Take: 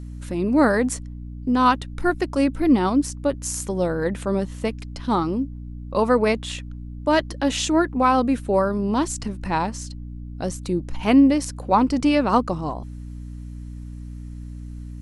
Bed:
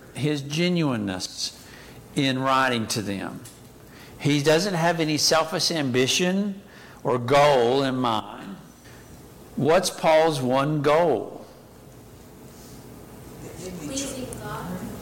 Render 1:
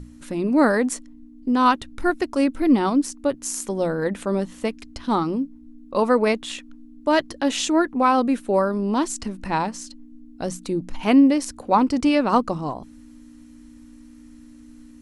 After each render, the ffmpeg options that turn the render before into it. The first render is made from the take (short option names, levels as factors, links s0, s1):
-af "bandreject=f=60:t=h:w=6,bandreject=f=120:t=h:w=6,bandreject=f=180:t=h:w=6"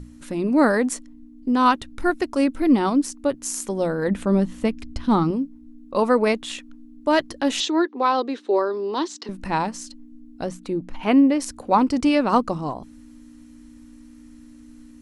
-filter_complex "[0:a]asettb=1/sr,asplit=3[s0][s1][s2];[s0]atrim=end=4.084[s3];[s1]atrim=start=4.08:end=5.31,asetpts=PTS-STARTPTS,afade=t=in:d=0.004:c=qsin,afade=t=out:st=1.226:d=0.004:c=qsin,bass=f=250:g=9,treble=f=4000:g=-3[s4];[s2]atrim=start=5.306[s5];[s3][s4]acrossfade=d=0.004:c1=hsin:c2=qsin[s6];[s6][s5]acrossfade=d=0.004:c1=qsin:c2=hsin,asettb=1/sr,asplit=3[s7][s8][s9];[s7]atrim=end=7.604[s10];[s8]atrim=start=7.6:end=9.29,asetpts=PTS-STARTPTS,afade=t=in:d=0.004:c=qsin,afade=t=out:st=1.686:d=0.004:c=qsin,highpass=f=330:w=0.5412,highpass=f=330:w=1.3066,equalizer=f=380:t=q:w=4:g=6,equalizer=f=640:t=q:w=4:g=-7,equalizer=f=1400:t=q:w=4:g=-4,equalizer=f=2400:t=q:w=4:g=-5,equalizer=f=3800:t=q:w=4:g=7,lowpass=f=5800:w=0.5412,lowpass=f=5800:w=1.3066[s11];[s9]atrim=start=9.286[s12];[s10][s11]acrossfade=d=0.004:c1=hsin:c2=qsin[s13];[s13][s12]acrossfade=d=0.004:c1=qsin:c2=hsin,asettb=1/sr,asplit=3[s14][s15][s16];[s14]atrim=end=10.444[s17];[s15]atrim=start=10.44:end=11.4,asetpts=PTS-STARTPTS,afade=t=in:d=0.004:c=qsin,afade=t=out:st=0.956:d=0.004:c=qsin,bass=f=250:g=-3,treble=f=4000:g=-10[s18];[s16]atrim=start=11.396[s19];[s17][s18]acrossfade=d=0.004:c1=hsin:c2=qsin[s20];[s20][s19]acrossfade=d=0.004:c1=qsin:c2=hsin"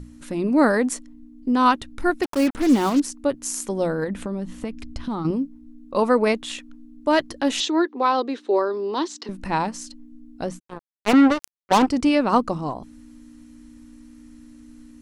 -filter_complex "[0:a]asettb=1/sr,asplit=3[s0][s1][s2];[s0]atrim=end=2.234[s3];[s1]atrim=start=2.23:end=3,asetpts=PTS-STARTPTS,afade=t=in:d=0.004:c=qsin,afade=t=out:st=0.766:d=0.004:c=qsin,acrusher=bits=4:mix=0:aa=0.5[s4];[s2]atrim=start=2.996[s5];[s3][s4]acrossfade=d=0.004:c1=hsin:c2=qsin[s6];[s6][s5]acrossfade=d=0.004:c1=qsin:c2=hsin,asettb=1/sr,asplit=3[s7][s8][s9];[s7]atrim=end=4.044[s10];[s8]atrim=start=4.04:end=5.25,asetpts=PTS-STARTPTS,afade=t=in:d=0.004:c=qsin,afade=t=out:st=1.206:d=0.004:c=qsin,acompressor=threshold=0.0708:ratio=12:attack=3.2:release=140:knee=1:detection=peak[s11];[s9]atrim=start=5.246[s12];[s10][s11]acrossfade=d=0.004:c1=hsin:c2=qsin[s13];[s13][s12]acrossfade=d=0.004:c1=qsin:c2=hsin,asplit=3[s14][s15][s16];[s14]afade=t=out:st=10.58:d=0.02[s17];[s15]acrusher=bits=2:mix=0:aa=0.5,afade=t=in:st=10.58:d=0.02,afade=t=out:st=11.86:d=0.02[s18];[s16]afade=t=in:st=11.86:d=0.02[s19];[s17][s18][s19]amix=inputs=3:normalize=0"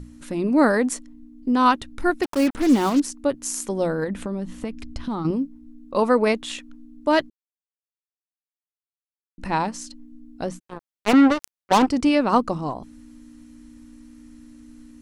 -filter_complex "[0:a]asplit=3[s0][s1][s2];[s0]atrim=end=7.3,asetpts=PTS-STARTPTS,afade=t=out:st=7.296:d=0.004:c=hsin[s3];[s1]atrim=start=7.3:end=9.38,asetpts=PTS-STARTPTS,volume=0[s4];[s2]atrim=start=9.38,asetpts=PTS-STARTPTS,afade=t=in:d=0.004:c=hsin[s5];[s3][s4][s5]concat=n=3:v=0:a=1"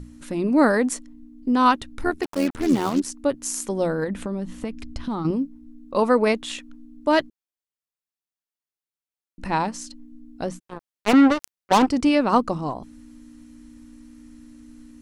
-filter_complex "[0:a]asplit=3[s0][s1][s2];[s0]afade=t=out:st=2.02:d=0.02[s3];[s1]tremolo=f=82:d=0.667,afade=t=in:st=2.02:d=0.02,afade=t=out:st=3.05:d=0.02[s4];[s2]afade=t=in:st=3.05:d=0.02[s5];[s3][s4][s5]amix=inputs=3:normalize=0"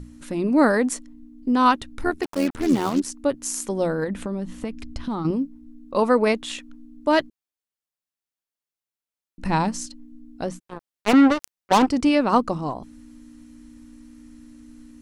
-filter_complex "[0:a]asettb=1/sr,asplit=3[s0][s1][s2];[s0]atrim=end=9.454[s3];[s1]atrim=start=9.45:end=9.86,asetpts=PTS-STARTPTS,afade=t=in:d=0.004:c=qsin,afade=t=out:st=0.406:d=0.004:c=qsin,bass=f=250:g=8,treble=f=4000:g=4[s4];[s2]atrim=start=9.856[s5];[s3][s4]acrossfade=d=0.004:c1=hsin:c2=qsin[s6];[s6][s5]acrossfade=d=0.004:c1=qsin:c2=hsin"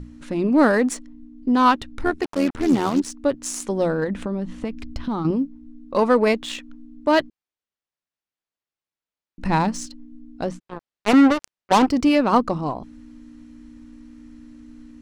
-filter_complex "[0:a]asplit=2[s0][s1];[s1]asoftclip=type=hard:threshold=0.126,volume=0.282[s2];[s0][s2]amix=inputs=2:normalize=0,adynamicsmooth=sensitivity=5:basefreq=5500"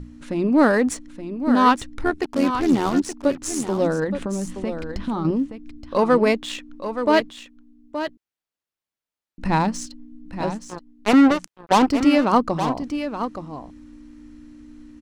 -af "aecho=1:1:873:0.335"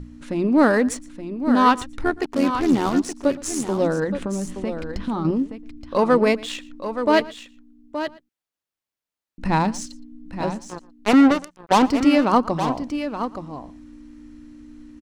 -filter_complex "[0:a]asplit=2[s0][s1];[s1]adelay=116.6,volume=0.0891,highshelf=f=4000:g=-2.62[s2];[s0][s2]amix=inputs=2:normalize=0"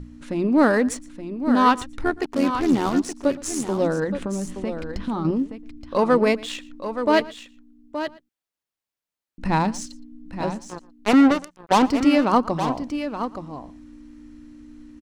-af "volume=0.891"